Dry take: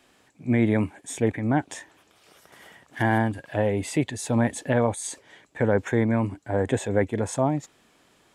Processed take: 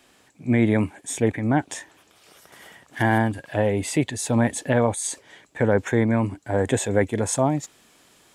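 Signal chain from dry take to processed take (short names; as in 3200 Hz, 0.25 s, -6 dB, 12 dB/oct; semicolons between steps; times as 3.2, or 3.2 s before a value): high shelf 4100 Hz +4 dB, from 6.46 s +9 dB; gain +2 dB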